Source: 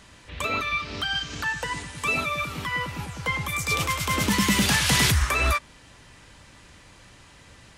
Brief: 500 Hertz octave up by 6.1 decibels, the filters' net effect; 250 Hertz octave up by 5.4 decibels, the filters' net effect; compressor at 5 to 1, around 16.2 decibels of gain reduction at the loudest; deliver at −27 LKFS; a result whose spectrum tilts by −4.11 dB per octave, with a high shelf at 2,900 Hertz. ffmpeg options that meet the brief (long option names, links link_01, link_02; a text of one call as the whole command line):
ffmpeg -i in.wav -af "equalizer=frequency=250:width_type=o:gain=6,equalizer=frequency=500:width_type=o:gain=6,highshelf=frequency=2900:gain=-3.5,acompressor=threshold=-33dB:ratio=5,volume=8dB" out.wav